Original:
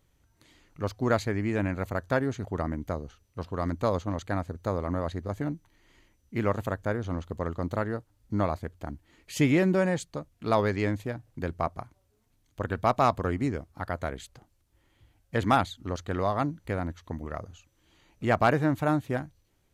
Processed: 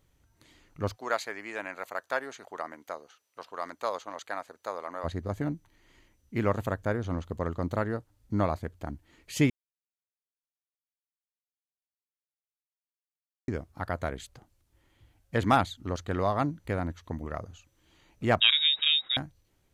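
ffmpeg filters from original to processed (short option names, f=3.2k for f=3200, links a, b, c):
-filter_complex "[0:a]asplit=3[a][b][c];[a]afade=t=out:st=0.95:d=0.02[d];[b]highpass=710,afade=t=in:st=0.95:d=0.02,afade=t=out:st=5.03:d=0.02[e];[c]afade=t=in:st=5.03:d=0.02[f];[d][e][f]amix=inputs=3:normalize=0,asettb=1/sr,asplit=3[g][h][i];[g]atrim=end=18.404[j];[h]atrim=start=18.4:end=19.17,asetpts=PTS-STARTPTS,afade=t=in:d=0.004:c=qsin,afade=t=out:st=0.766:d=0.004:c=qsin,lowpass=f=3.3k:t=q:w=0.5098,lowpass=f=3.3k:t=q:w=0.6013,lowpass=f=3.3k:t=q:w=0.9,lowpass=f=3.3k:t=q:w=2.563,afreqshift=-3900[k];[i]atrim=start=19.166[l];[j][k]acrossfade=d=0.004:c1=hsin:c2=qsin[m];[m][l]acrossfade=d=0.004:c1=qsin:c2=hsin,asplit=3[n][o][p];[n]atrim=end=9.5,asetpts=PTS-STARTPTS,afade=t=out:st=9.496:d=0.004:c=hsin[q];[o]atrim=start=9.5:end=13.48,asetpts=PTS-STARTPTS,volume=0[r];[p]atrim=start=13.48,asetpts=PTS-STARTPTS,afade=t=in:d=0.004:c=hsin[s];[q][r][s]concat=n=3:v=0:a=1"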